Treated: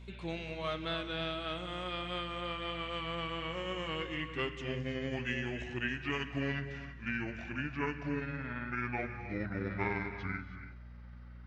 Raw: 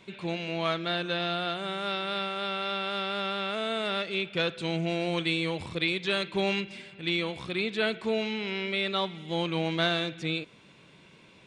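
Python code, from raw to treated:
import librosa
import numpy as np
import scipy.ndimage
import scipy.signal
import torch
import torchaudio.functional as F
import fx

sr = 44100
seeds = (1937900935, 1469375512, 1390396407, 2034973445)

y = fx.pitch_glide(x, sr, semitones=-10.5, runs='starting unshifted')
y = fx.rev_gated(y, sr, seeds[0], gate_ms=350, shape='rising', drr_db=9.0)
y = fx.dmg_buzz(y, sr, base_hz=60.0, harmonics=4, level_db=-43.0, tilt_db=-8, odd_only=False)
y = y * 10.0 ** (-6.5 / 20.0)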